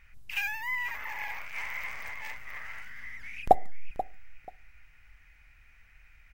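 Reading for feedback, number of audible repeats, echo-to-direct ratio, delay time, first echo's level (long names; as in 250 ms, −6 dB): 21%, 2, −13.5 dB, 485 ms, −13.5 dB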